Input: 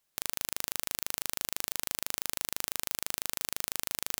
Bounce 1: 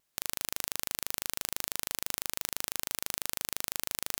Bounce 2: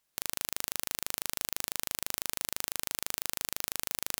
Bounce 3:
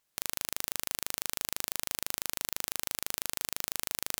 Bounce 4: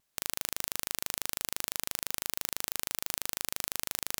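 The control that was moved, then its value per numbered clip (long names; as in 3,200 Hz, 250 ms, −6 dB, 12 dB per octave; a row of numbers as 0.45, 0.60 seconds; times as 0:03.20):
pitch vibrato, speed: 0.81, 8.4, 4.8, 0.46 Hertz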